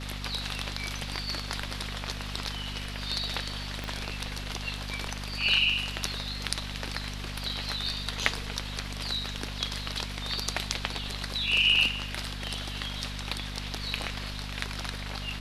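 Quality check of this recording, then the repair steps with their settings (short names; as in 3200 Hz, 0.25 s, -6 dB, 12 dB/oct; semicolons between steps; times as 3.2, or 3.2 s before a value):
hum 50 Hz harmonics 5 -38 dBFS
3.84 pop -20 dBFS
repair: de-click; de-hum 50 Hz, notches 5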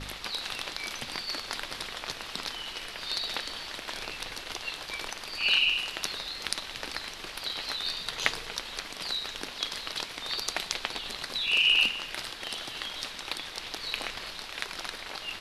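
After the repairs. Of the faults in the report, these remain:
3.84 pop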